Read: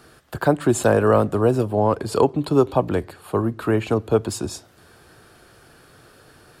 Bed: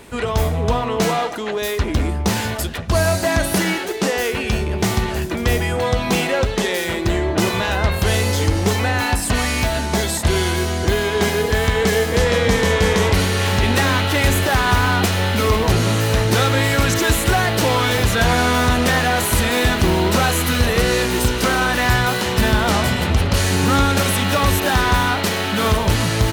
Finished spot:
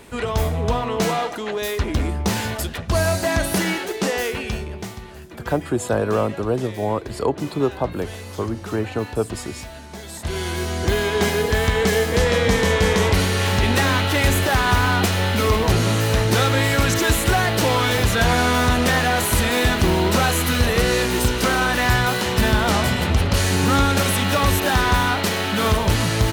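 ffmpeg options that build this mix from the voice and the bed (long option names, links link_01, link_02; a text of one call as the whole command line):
ffmpeg -i stem1.wav -i stem2.wav -filter_complex "[0:a]adelay=5050,volume=-4dB[link_01];[1:a]volume=13dB,afade=type=out:start_time=4.18:duration=0.77:silence=0.188365,afade=type=in:start_time=10.02:duration=0.96:silence=0.16788[link_02];[link_01][link_02]amix=inputs=2:normalize=0" out.wav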